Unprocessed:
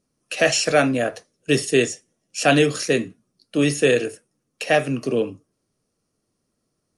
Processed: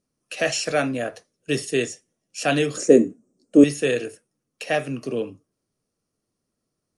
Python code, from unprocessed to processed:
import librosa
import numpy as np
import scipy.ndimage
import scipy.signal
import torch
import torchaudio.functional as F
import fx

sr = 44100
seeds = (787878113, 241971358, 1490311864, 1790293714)

y = fx.curve_eq(x, sr, hz=(140.0, 250.0, 530.0, 970.0, 4300.0, 7600.0, 11000.0), db=(0, 14, 12, 1, -11, 12, -10), at=(2.77, 3.64))
y = y * librosa.db_to_amplitude(-5.0)